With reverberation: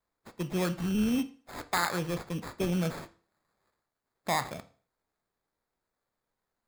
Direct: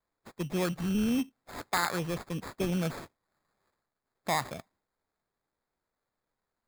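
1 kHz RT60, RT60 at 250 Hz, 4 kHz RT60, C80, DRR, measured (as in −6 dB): 0.40 s, 0.40 s, 0.40 s, 21.5 dB, 11.0 dB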